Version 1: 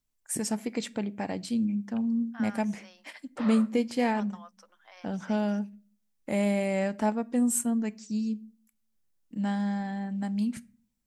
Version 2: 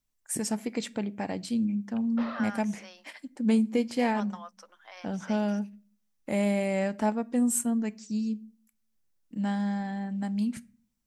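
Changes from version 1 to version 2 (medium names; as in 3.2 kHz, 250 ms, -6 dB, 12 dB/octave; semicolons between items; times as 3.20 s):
second voice +5.0 dB; background: entry -1.20 s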